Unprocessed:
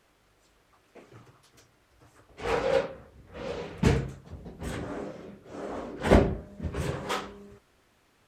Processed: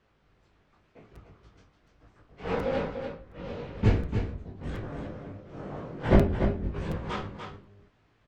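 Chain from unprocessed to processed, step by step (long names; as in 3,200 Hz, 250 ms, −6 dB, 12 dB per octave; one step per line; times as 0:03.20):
sub-octave generator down 1 octave, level +3 dB
high-shelf EQ 11,000 Hz −5.5 dB
chorus effect 1 Hz, delay 18.5 ms, depth 3.2 ms
high-frequency loss of the air 130 metres
single-tap delay 293 ms −7 dB
regular buffer underruns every 0.72 s, samples 256, repeat, from 0:00.43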